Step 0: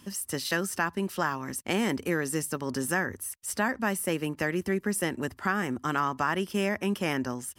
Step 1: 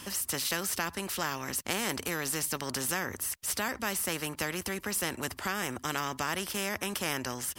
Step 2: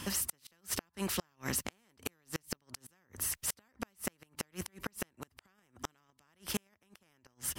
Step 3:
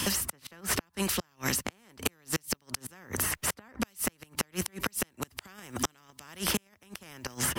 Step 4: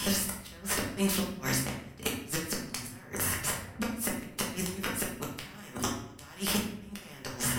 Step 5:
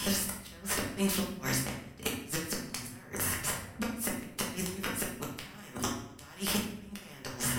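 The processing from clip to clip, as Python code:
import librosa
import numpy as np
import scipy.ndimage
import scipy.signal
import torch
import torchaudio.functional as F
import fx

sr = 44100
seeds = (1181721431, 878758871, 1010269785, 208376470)

y1 = fx.spectral_comp(x, sr, ratio=2.0)
y2 = fx.bass_treble(y1, sr, bass_db=5, treble_db=-2)
y2 = fx.gate_flip(y2, sr, shuts_db=-21.0, range_db=-39)
y2 = y2 * 10.0 ** (1.0 / 20.0)
y3 = fx.band_squash(y2, sr, depth_pct=100)
y3 = y3 * 10.0 ** (6.5 / 20.0)
y4 = fx.room_shoebox(y3, sr, seeds[0], volume_m3=150.0, walls='mixed', distance_m=1.3)
y4 = y4 * 10.0 ** (-4.5 / 20.0)
y5 = fx.echo_feedback(y4, sr, ms=70, feedback_pct=44, wet_db=-18.5)
y5 = y5 * 10.0 ** (-1.5 / 20.0)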